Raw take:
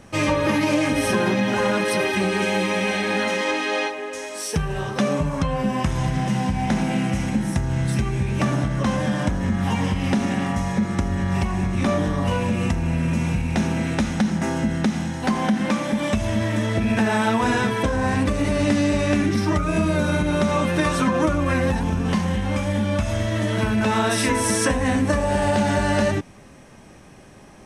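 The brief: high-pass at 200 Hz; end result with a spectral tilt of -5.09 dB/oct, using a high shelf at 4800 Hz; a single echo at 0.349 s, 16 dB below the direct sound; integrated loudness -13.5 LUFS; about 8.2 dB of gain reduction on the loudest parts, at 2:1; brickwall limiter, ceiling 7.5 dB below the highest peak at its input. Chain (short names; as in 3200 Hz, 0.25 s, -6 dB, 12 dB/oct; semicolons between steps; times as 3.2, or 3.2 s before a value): HPF 200 Hz; high shelf 4800 Hz -3.5 dB; compressor 2:1, threshold -33 dBFS; limiter -22.5 dBFS; echo 0.349 s -16 dB; gain +18.5 dB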